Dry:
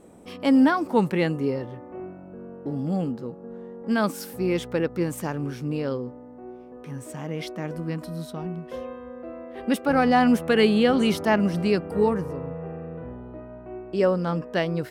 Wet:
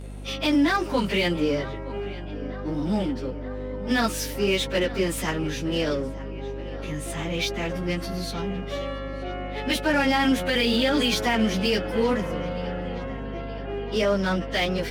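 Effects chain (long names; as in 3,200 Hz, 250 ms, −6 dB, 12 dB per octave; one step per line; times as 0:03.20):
phase-vocoder pitch shift without resampling +1.5 semitones
meter weighting curve D
brickwall limiter −18 dBFS, peak gain reduction 11.5 dB
in parallel at −11 dB: wave folding −34.5 dBFS
on the sum: mains hum 50 Hz, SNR 11 dB
on a send: feedback echo with a low-pass in the loop 921 ms, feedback 74%, low-pass 4,100 Hz, level −17.5 dB
on the sum: level +4 dB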